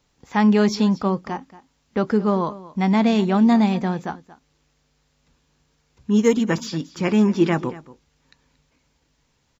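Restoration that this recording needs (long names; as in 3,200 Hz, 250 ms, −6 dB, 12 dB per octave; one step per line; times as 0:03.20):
echo removal 230 ms −18 dB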